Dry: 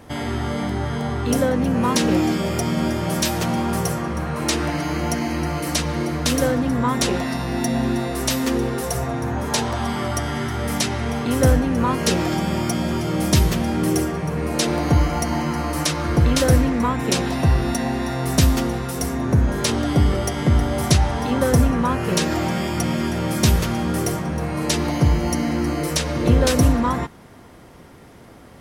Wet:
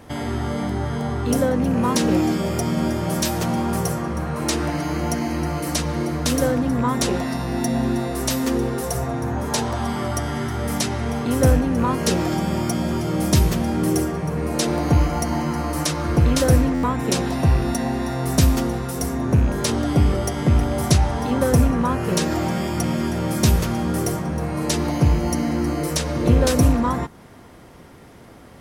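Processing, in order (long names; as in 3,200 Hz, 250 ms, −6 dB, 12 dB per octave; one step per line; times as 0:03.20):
loose part that buzzes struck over −17 dBFS, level −26 dBFS
dynamic equaliser 2,700 Hz, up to −4 dB, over −40 dBFS, Q 0.72
buffer that repeats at 0:16.74, samples 512, times 7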